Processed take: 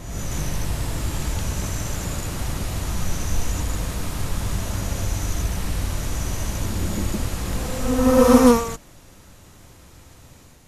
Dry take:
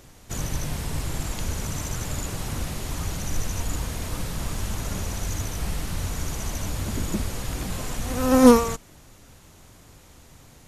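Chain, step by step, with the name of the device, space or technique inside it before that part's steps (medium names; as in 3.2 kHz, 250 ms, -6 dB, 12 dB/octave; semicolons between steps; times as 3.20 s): reverse reverb (reverse; reverberation RT60 1.3 s, pre-delay 109 ms, DRR -1 dB; reverse); trim -1 dB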